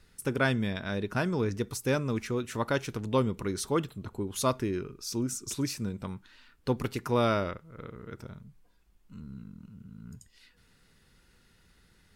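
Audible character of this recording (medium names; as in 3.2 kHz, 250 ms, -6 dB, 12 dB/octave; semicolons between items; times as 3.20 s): noise floor -64 dBFS; spectral tilt -5.0 dB/octave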